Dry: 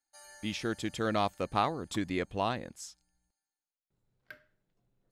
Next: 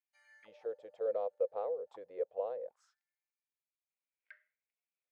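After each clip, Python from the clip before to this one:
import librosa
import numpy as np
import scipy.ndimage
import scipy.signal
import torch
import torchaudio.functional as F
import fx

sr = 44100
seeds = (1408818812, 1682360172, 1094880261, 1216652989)

y = fx.auto_wah(x, sr, base_hz=500.0, top_hz=2400.0, q=7.3, full_db=-31.0, direction='down')
y = fx.low_shelf_res(y, sr, hz=370.0, db=-8.5, q=3.0)
y = F.gain(torch.from_numpy(y), 1.0).numpy()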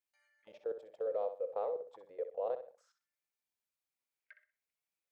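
y = fx.level_steps(x, sr, step_db=20)
y = fx.echo_feedback(y, sr, ms=63, feedback_pct=27, wet_db=-10)
y = F.gain(torch.from_numpy(y), 5.0).numpy()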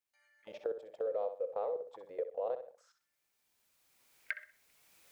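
y = fx.recorder_agc(x, sr, target_db=-28.5, rise_db_per_s=15.0, max_gain_db=30)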